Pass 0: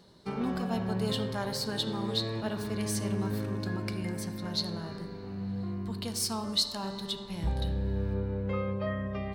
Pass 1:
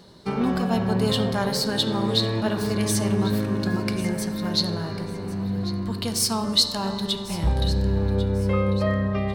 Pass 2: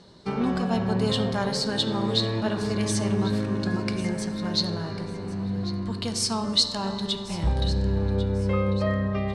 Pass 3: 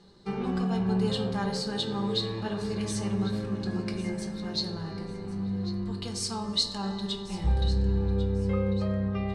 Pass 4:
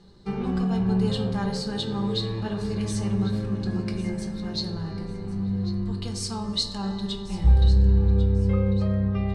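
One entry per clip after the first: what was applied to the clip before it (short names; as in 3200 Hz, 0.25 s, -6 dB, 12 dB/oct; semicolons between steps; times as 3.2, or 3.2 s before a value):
echo with dull and thin repeats by turns 0.548 s, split 1200 Hz, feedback 57%, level -10.5 dB; gain +8.5 dB
LPF 8800 Hz 24 dB/oct; gain -2 dB
reverb RT60 0.40 s, pre-delay 4 ms, DRR 4 dB; gain -8.5 dB
low shelf 140 Hz +10.5 dB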